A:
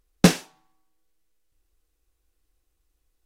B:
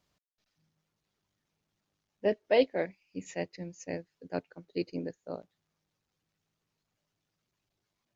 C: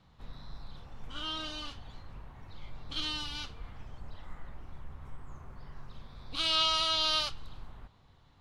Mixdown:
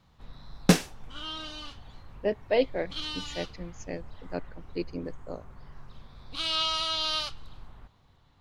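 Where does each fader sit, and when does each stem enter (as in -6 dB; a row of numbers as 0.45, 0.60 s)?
-4.0, 0.0, -0.5 dB; 0.45, 0.00, 0.00 s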